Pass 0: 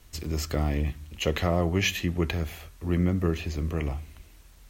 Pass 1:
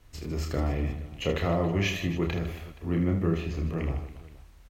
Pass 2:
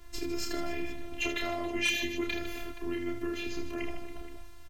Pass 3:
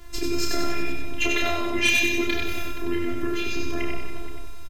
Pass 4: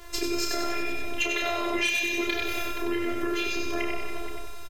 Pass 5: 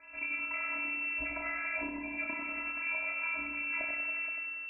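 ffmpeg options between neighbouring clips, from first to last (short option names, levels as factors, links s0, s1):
-filter_complex "[0:a]highshelf=f=4000:g=-10,asplit=2[s0][s1];[s1]aecho=0:1:30|78|154.8|277.7|474.3:0.631|0.398|0.251|0.158|0.1[s2];[s0][s2]amix=inputs=2:normalize=0,volume=0.75"
-filter_complex "[0:a]acrossover=split=2200[s0][s1];[s0]acompressor=threshold=0.0158:ratio=6[s2];[s2][s1]amix=inputs=2:normalize=0,afftfilt=real='hypot(re,im)*cos(PI*b)':imag='0':win_size=512:overlap=0.75,aeval=exprs='0.119*sin(PI/2*1.58*val(0)/0.119)':c=same,volume=1.19"
-af "aecho=1:1:95|190|285|380|475|570|665:0.668|0.334|0.167|0.0835|0.0418|0.0209|0.0104,volume=2.37"
-af "lowshelf=f=320:t=q:w=1.5:g=-9,acompressor=threshold=0.0447:ratio=6,volume=1.5"
-af "lowpass=f=2300:t=q:w=0.5098,lowpass=f=2300:t=q:w=0.6013,lowpass=f=2300:t=q:w=0.9,lowpass=f=2300:t=q:w=2.563,afreqshift=-2700,volume=0.398"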